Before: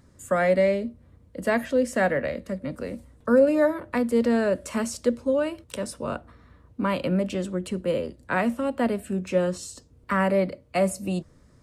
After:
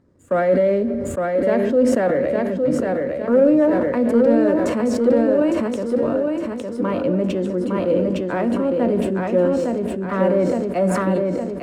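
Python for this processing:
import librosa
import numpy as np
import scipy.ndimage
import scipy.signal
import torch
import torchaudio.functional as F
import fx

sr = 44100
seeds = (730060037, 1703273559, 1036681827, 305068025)

p1 = fx.lowpass(x, sr, hz=2800.0, slope=6)
p2 = fx.leveller(p1, sr, passes=1)
p3 = fx.peak_eq(p2, sr, hz=360.0, db=11.0, octaves=2.0)
p4 = p3 + fx.echo_feedback(p3, sr, ms=860, feedback_pct=44, wet_db=-3.5, dry=0)
p5 = fx.rev_fdn(p4, sr, rt60_s=1.0, lf_ratio=1.05, hf_ratio=0.7, size_ms=59.0, drr_db=12.5)
p6 = fx.sustainer(p5, sr, db_per_s=24.0)
y = F.gain(torch.from_numpy(p6), -7.5).numpy()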